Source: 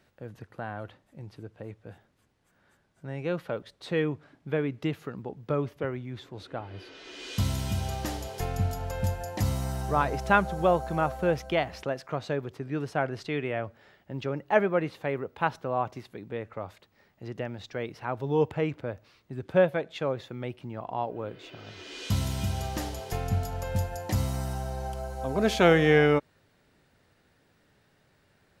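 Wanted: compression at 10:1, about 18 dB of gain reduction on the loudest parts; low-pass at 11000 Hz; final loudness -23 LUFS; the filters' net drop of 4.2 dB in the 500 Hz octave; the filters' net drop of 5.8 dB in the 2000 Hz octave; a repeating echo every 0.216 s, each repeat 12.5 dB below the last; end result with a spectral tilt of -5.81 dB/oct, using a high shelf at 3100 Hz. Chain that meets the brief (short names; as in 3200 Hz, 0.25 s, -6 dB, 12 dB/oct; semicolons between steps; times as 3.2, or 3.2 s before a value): LPF 11000 Hz; bell 500 Hz -4.5 dB; bell 2000 Hz -6.5 dB; high shelf 3100 Hz -3.5 dB; compressor 10:1, threshold -38 dBFS; feedback echo 0.216 s, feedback 24%, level -12.5 dB; gain +21 dB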